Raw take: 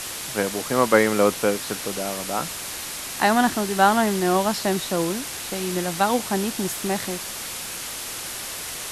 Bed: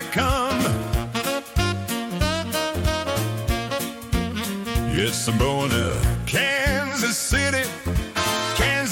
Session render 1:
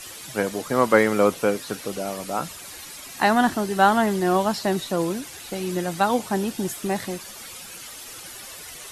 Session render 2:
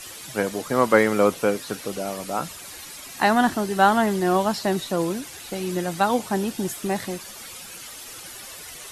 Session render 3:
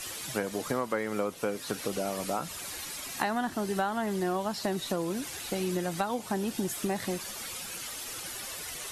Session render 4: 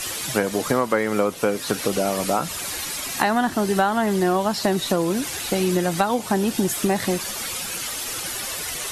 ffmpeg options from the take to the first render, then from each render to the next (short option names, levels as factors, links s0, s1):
-af "afftdn=nr=11:nf=-33"
-af anull
-af "acompressor=threshold=0.0447:ratio=8"
-af "volume=3.16,alimiter=limit=0.794:level=0:latency=1"